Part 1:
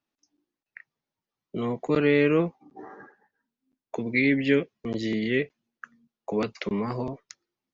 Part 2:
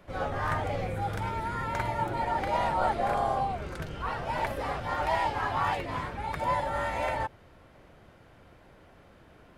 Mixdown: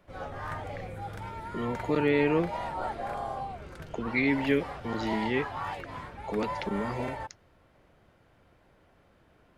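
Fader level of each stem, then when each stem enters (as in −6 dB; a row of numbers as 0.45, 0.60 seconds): −4.0, −7.0 decibels; 0.00, 0.00 seconds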